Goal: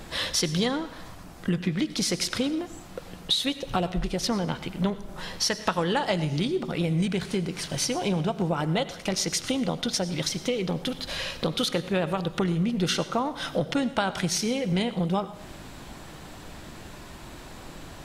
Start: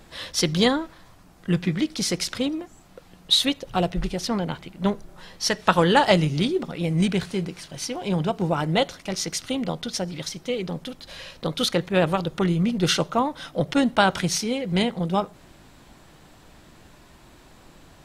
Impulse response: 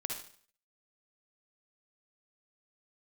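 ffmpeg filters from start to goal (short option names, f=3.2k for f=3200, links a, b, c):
-filter_complex "[0:a]acompressor=threshold=-32dB:ratio=5,asplit=2[a][b];[1:a]atrim=start_sample=2205,asetrate=26901,aresample=44100[c];[b][c]afir=irnorm=-1:irlink=0,volume=-14.5dB[d];[a][d]amix=inputs=2:normalize=0,volume=6dB"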